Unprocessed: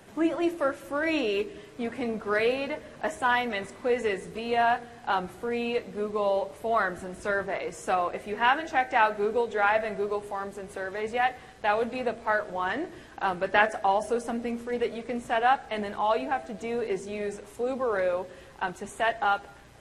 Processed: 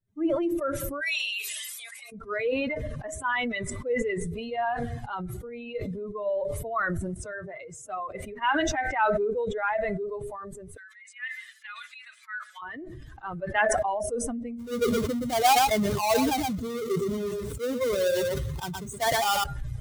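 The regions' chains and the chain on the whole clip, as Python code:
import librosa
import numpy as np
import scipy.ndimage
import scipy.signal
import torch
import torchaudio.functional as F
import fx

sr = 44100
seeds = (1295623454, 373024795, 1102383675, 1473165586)

y = fx.chain(x, sr, fx.highpass(hz=660.0, slope=24),
    fx.tilt_eq(slope=4.5), at=(1.01, 2.12))
y = fx.chain(y, sr, fx.highpass(hz=63.0, slope=12),
    fx.upward_expand(threshold_db=-37.0, expansion=1.5), at=(7.14, 8.15))
y = fx.chain(y, sr, fx.highpass(hz=1400.0, slope=24),
    fx.quant_dither(seeds[0], bits=12, dither='none'), at=(10.77, 12.62))
y = fx.chain(y, sr, fx.halfwave_hold(),
    fx.highpass(hz=64.0, slope=12),
    fx.echo_single(ms=120, db=-7.5), at=(14.59, 19.44))
y = fx.bin_expand(y, sr, power=2.0)
y = fx.sustainer(y, sr, db_per_s=21.0)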